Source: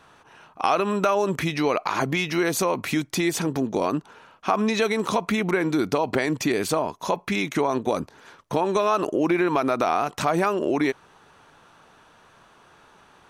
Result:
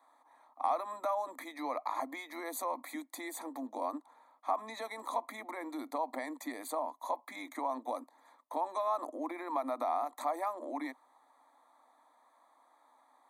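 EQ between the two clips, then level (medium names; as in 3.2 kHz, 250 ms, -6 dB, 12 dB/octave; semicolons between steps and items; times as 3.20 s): steep high-pass 250 Hz 96 dB/octave; Butterworth band-stop 2.8 kHz, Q 1.4; static phaser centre 1.5 kHz, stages 6; -8.0 dB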